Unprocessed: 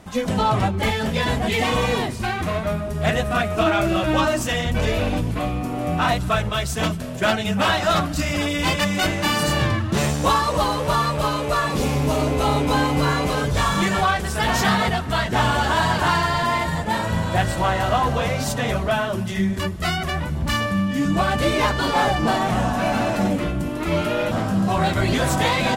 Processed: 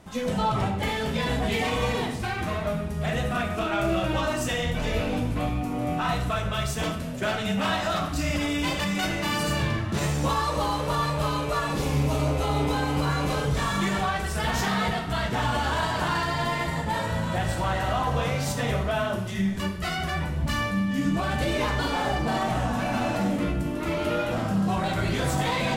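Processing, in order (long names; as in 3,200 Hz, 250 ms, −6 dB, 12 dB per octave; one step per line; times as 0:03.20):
brickwall limiter −13 dBFS, peak gain reduction 6 dB
on a send: convolution reverb RT60 0.60 s, pre-delay 15 ms, DRR 3 dB
on the sum: level −6 dB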